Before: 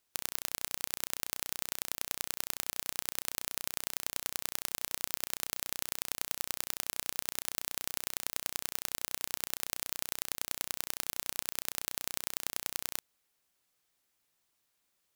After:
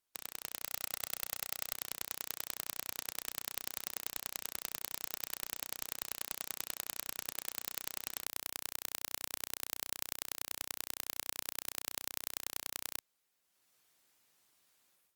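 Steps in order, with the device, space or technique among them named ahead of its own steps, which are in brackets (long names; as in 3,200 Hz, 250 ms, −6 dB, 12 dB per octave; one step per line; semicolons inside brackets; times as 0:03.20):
0:00.66–0:01.73: comb filter 1.5 ms, depth 73%
video call (high-pass filter 100 Hz 6 dB per octave; automatic gain control gain up to 13 dB; level −7 dB; Opus 32 kbit/s 48,000 Hz)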